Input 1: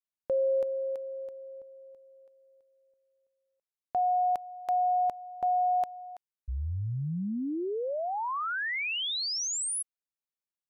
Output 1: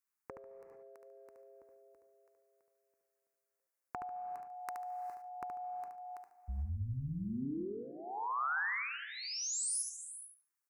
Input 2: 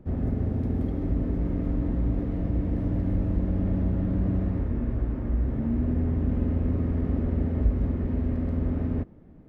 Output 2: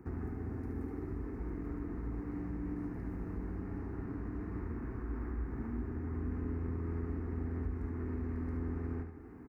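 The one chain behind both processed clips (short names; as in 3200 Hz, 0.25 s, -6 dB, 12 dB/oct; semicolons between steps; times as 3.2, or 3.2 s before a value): HPF 42 Hz 24 dB/oct; resonant low shelf 270 Hz -10 dB, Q 1.5; compressor 5:1, threshold -42 dBFS; AM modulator 130 Hz, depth 25%; fixed phaser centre 1400 Hz, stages 4; feedback echo 72 ms, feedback 25%, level -6.5 dB; non-linear reverb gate 0.47 s rising, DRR 11 dB; gain +8 dB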